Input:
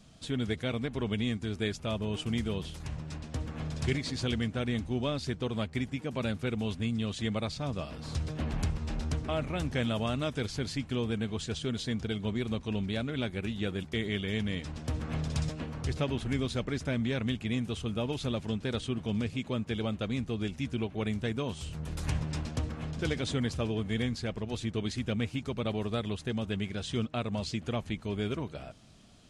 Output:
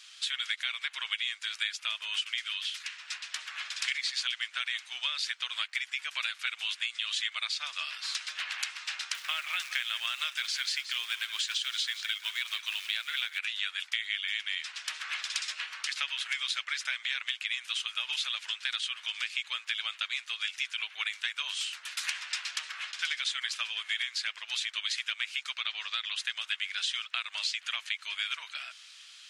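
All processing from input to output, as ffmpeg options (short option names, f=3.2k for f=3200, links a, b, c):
-filter_complex "[0:a]asettb=1/sr,asplit=3[a][b][c];[a]atrim=end=2.194[d];[b]atrim=start=2.19:end=3.01,asetpts=PTS-STARTPTS,afade=t=in:d=0.004:c=qsin,afade=t=out:st=0.816:d=0.004:c=qsin,highpass=1.2k,highshelf=f=8.9k:g=-8[e];[c]atrim=start=3.006[f];[d][e]acrossfade=d=0.004:c1=hsin:c2=qsin[g];[g][f]acrossfade=d=0.004:c1=qsin:c2=hsin,asettb=1/sr,asplit=3[h][i][j];[h]atrim=end=9.144[k];[i]atrim=start=9.14:end=13.39,asetpts=PTS-STARTPTS,afade=t=in:d=0.004:c=qsin,afade=t=out:st=4.246:d=0.004:c=qsin,highpass=40,acrusher=bits=6:mode=log:mix=0:aa=0.000001,aecho=1:1:173:0.211,atrim=end_sample=187425[l];[j]atrim=start=13.386[m];[k][l]acrossfade=d=0.004:c1=hsin:c2=qsin[n];[n][m]acrossfade=d=0.004:c1=qsin:c2=hsin,asettb=1/sr,asplit=3[o][p][q];[o]atrim=end=25.574[r];[p]atrim=start=25.57:end=26.16,asetpts=PTS-STARTPTS,afade=t=in:d=0.004:c=qsin,afade=t=out:st=0.586:d=0.004:c=qsin,lowpass=f=6.7k:w=0.5412,lowpass=f=6.7k:w=1.3066,acrossover=split=300|3000[s][t][u];[t]acompressor=threshold=-32dB:ratio=6:attack=3.2:release=140:knee=2.83:detection=peak[v];[s][v][u]amix=inputs=3:normalize=0[w];[q]atrim=start=26.156[x];[r][w]acrossfade=d=0.004:c1=hsin:c2=qsin[y];[y][x]acrossfade=d=0.004:c1=qsin:c2=hsin,highpass=f=1.4k:w=0.5412,highpass=f=1.4k:w=1.3066,equalizer=f=3k:t=o:w=2.4:g=8.5,acompressor=threshold=-35dB:ratio=6,volume=6.5dB"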